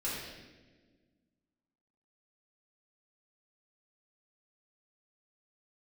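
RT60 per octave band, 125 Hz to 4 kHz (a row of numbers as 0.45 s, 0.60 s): 2.0 s, 2.2 s, 1.7 s, 1.1 s, 1.2 s, 1.1 s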